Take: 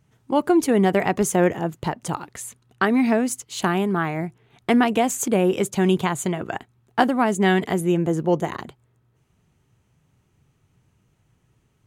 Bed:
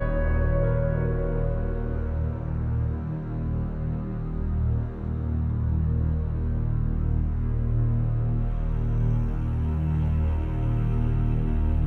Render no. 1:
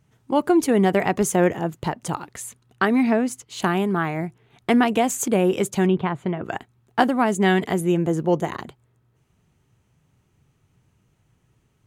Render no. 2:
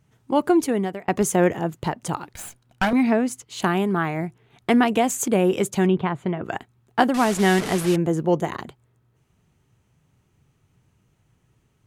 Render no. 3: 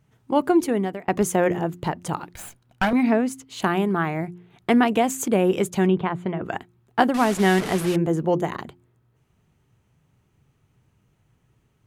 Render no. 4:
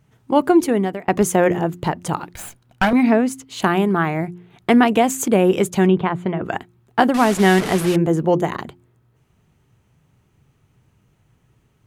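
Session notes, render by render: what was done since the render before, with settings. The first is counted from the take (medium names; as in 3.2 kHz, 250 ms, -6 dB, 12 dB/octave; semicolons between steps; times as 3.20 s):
3.03–3.60 s: treble shelf 5 kHz -8 dB; 5.86–6.44 s: distance through air 410 m
0.53–1.08 s: fade out; 2.33–2.93 s: comb filter that takes the minimum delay 1.3 ms; 7.14–7.96 s: one-bit delta coder 64 kbps, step -23 dBFS
peaking EQ 7.2 kHz -3.5 dB 1.7 oct; de-hum 88.46 Hz, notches 4
trim +4.5 dB; peak limiter -3 dBFS, peak gain reduction 2.5 dB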